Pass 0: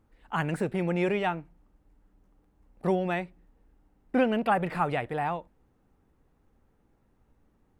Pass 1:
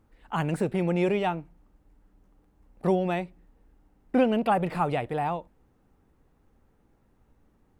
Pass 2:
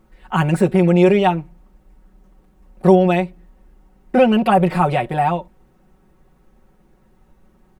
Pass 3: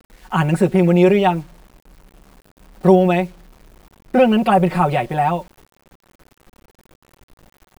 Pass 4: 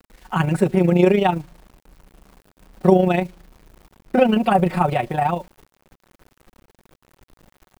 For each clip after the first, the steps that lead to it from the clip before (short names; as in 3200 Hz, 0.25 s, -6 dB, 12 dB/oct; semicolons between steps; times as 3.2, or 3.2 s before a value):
dynamic EQ 1700 Hz, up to -7 dB, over -44 dBFS, Q 1.5; gain +2.5 dB
comb 5.4 ms, depth 85%; gain +7.5 dB
requantised 8-bit, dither none
AM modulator 27 Hz, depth 40%